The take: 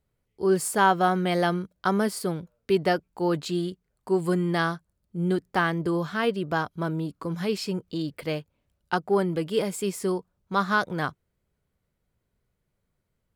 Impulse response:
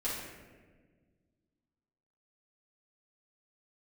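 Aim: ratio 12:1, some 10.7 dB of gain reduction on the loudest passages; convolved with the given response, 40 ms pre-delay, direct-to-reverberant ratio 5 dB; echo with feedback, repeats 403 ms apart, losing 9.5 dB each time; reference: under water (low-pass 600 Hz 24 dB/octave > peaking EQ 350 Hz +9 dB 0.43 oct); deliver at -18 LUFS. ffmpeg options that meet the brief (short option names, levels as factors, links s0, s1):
-filter_complex "[0:a]acompressor=threshold=0.0398:ratio=12,aecho=1:1:403|806|1209|1612:0.335|0.111|0.0365|0.012,asplit=2[s0][s1];[1:a]atrim=start_sample=2205,adelay=40[s2];[s1][s2]afir=irnorm=-1:irlink=0,volume=0.316[s3];[s0][s3]amix=inputs=2:normalize=0,lowpass=f=600:w=0.5412,lowpass=f=600:w=1.3066,equalizer=f=350:t=o:w=0.43:g=9,volume=3.55"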